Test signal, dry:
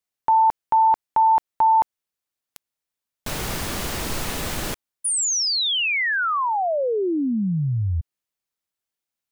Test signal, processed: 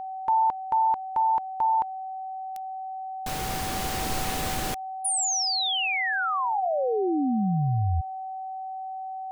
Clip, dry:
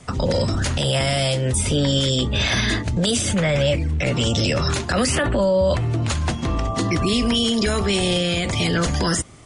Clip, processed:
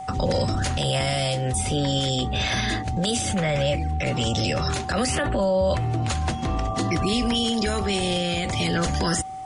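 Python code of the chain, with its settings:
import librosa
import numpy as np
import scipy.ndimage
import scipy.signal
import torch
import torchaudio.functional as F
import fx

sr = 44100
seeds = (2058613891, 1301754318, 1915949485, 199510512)

y = fx.rider(x, sr, range_db=3, speed_s=2.0)
y = y + 10.0 ** (-28.0 / 20.0) * np.sin(2.0 * np.pi * 760.0 * np.arange(len(y)) / sr)
y = y * librosa.db_to_amplitude(-4.0)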